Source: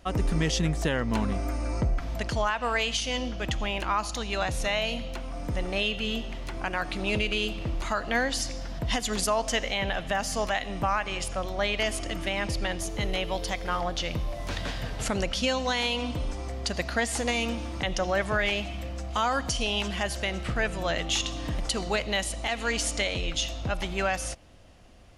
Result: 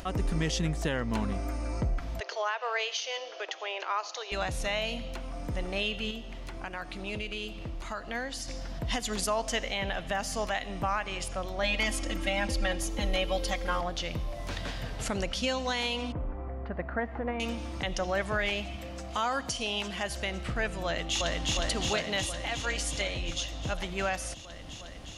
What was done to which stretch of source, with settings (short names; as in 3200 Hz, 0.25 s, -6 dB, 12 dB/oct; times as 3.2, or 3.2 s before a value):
2.2–4.32 Chebyshev band-pass 390–6400 Hz, order 5
6.11–8.48 gain -5.5 dB
11.63–13.81 comb 3.7 ms, depth 98%
16.12–17.4 LPF 1700 Hz 24 dB/oct
18.76–20.1 HPF 140 Hz 6 dB/oct
20.84–21.53 echo throw 0.36 s, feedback 75%, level -0.5 dB
22.2–23.53 notch comb 220 Hz
whole clip: upward compressor, threshold -30 dBFS; gain -3.5 dB